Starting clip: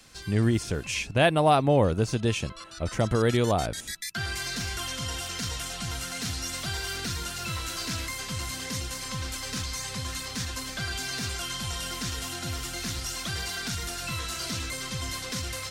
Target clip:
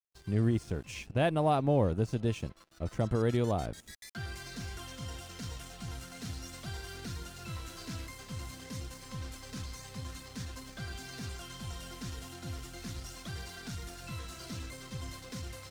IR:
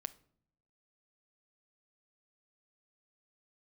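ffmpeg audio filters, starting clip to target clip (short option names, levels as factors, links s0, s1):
-af "aeval=exprs='sgn(val(0))*max(abs(val(0))-0.00631,0)':c=same,tiltshelf=f=900:g=4.5,volume=0.398"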